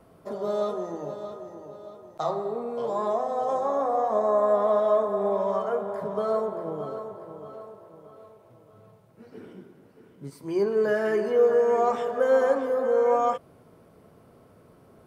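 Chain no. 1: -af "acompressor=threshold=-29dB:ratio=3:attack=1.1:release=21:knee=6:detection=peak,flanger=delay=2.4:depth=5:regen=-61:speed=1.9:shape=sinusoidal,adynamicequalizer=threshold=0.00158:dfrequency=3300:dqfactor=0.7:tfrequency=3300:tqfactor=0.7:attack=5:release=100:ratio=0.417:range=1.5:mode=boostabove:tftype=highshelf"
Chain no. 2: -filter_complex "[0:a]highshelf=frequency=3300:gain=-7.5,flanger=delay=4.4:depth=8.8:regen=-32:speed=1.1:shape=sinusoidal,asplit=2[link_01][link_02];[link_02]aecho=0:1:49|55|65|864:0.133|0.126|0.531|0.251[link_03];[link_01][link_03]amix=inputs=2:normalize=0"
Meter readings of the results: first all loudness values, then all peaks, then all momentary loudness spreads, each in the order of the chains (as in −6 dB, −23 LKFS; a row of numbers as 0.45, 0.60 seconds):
−36.0, −28.0 LKFS; −24.5, −12.5 dBFS; 15, 18 LU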